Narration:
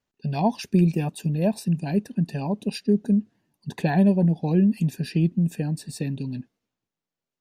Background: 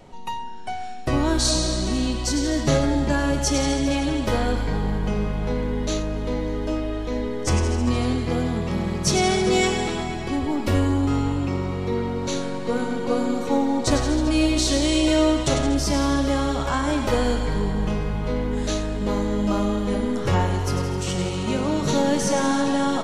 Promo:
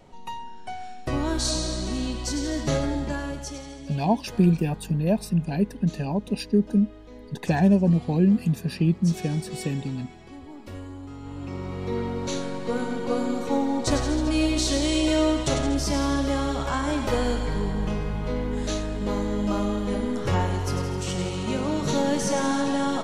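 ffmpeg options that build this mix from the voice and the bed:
-filter_complex "[0:a]adelay=3650,volume=1[s0];[1:a]volume=3.16,afade=t=out:st=2.86:d=0.78:silence=0.223872,afade=t=in:st=11.19:d=0.81:silence=0.177828[s1];[s0][s1]amix=inputs=2:normalize=0"

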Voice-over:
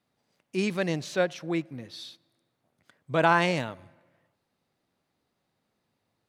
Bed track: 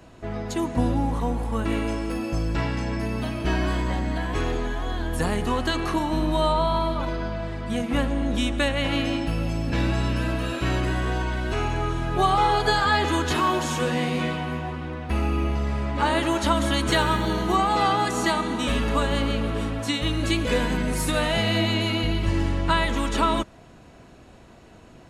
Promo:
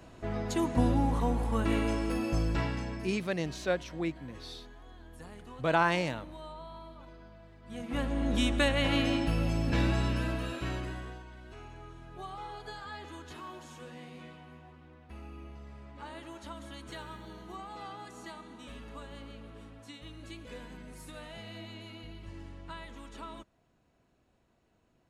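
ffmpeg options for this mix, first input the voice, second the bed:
-filter_complex "[0:a]adelay=2500,volume=0.596[s0];[1:a]volume=6.68,afade=t=out:st=2.4:d=0.85:silence=0.1,afade=t=in:st=7.62:d=0.8:silence=0.1,afade=t=out:st=9.71:d=1.52:silence=0.112202[s1];[s0][s1]amix=inputs=2:normalize=0"

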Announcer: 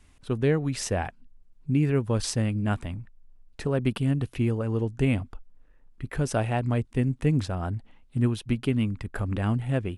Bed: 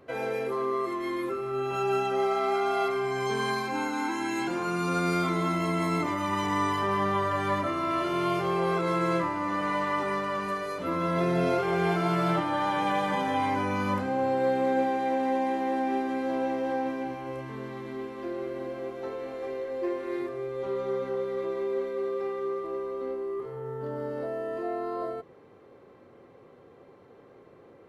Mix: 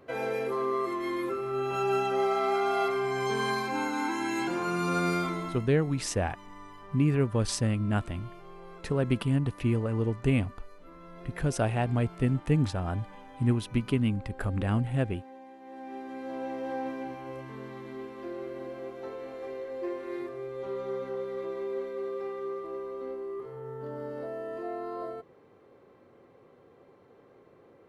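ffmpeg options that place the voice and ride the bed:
-filter_complex "[0:a]adelay=5250,volume=0.841[s0];[1:a]volume=7.08,afade=t=out:st=5.06:d=0.61:silence=0.0891251,afade=t=in:st=15.6:d=1.25:silence=0.133352[s1];[s0][s1]amix=inputs=2:normalize=0"

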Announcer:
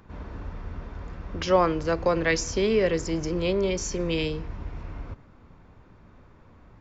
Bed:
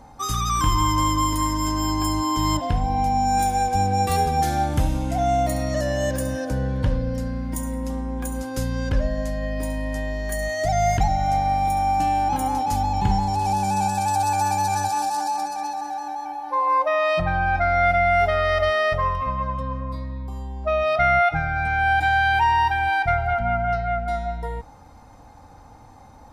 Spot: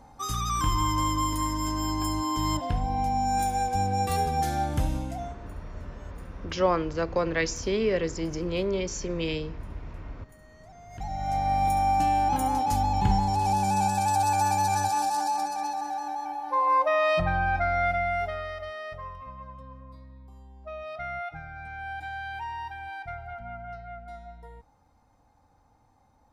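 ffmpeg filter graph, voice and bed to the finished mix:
-filter_complex "[0:a]adelay=5100,volume=0.708[s0];[1:a]volume=11.9,afade=t=out:st=4.96:d=0.39:silence=0.0630957,afade=t=in:st=10.9:d=0.72:silence=0.0446684,afade=t=out:st=17.15:d=1.43:silence=0.188365[s1];[s0][s1]amix=inputs=2:normalize=0"

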